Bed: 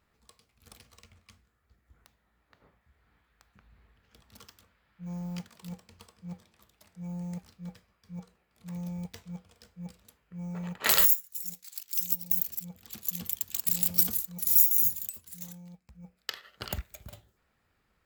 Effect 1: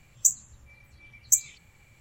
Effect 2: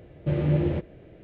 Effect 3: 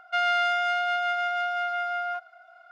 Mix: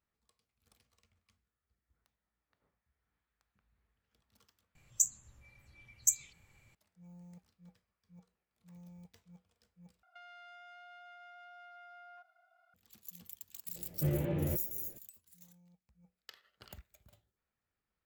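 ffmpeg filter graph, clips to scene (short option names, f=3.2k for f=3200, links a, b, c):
-filter_complex "[0:a]volume=-17dB[a];[3:a]acompressor=threshold=-33dB:ratio=6:attack=3.2:release=140:knee=1:detection=peak[b];[2:a]asplit=2[c][d];[d]adelay=11.4,afreqshift=-2.5[e];[c][e]amix=inputs=2:normalize=1[f];[a]asplit=3[g][h][i];[g]atrim=end=4.754[j];[1:a]atrim=end=2,asetpts=PTS-STARTPTS,volume=-7.5dB[k];[h]atrim=start=6.746:end=10.034[l];[b]atrim=end=2.71,asetpts=PTS-STARTPTS,volume=-18dB[m];[i]atrim=start=12.736[n];[f]atrim=end=1.23,asetpts=PTS-STARTPTS,volume=-5dB,afade=t=in:d=0.004:c=hsin,afade=t=out:st=1.226:d=0.004:c=hsin,adelay=13750[o];[j][k]acrossfade=d=0.004:c1=hsin:c2=hsin[p];[p][l]acrossfade=d=0.004:c1=hsin:c2=hsin[q];[q][m]acrossfade=d=0.004:c1=hsin:c2=hsin[r];[r][n]acrossfade=d=0.004:c1=hsin:c2=hsin[s];[s][o]amix=inputs=2:normalize=0"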